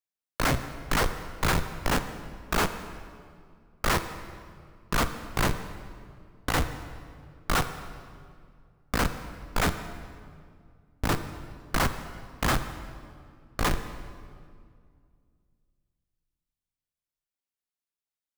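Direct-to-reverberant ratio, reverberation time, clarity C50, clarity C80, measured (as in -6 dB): 9.0 dB, 2.2 s, 10.5 dB, 11.5 dB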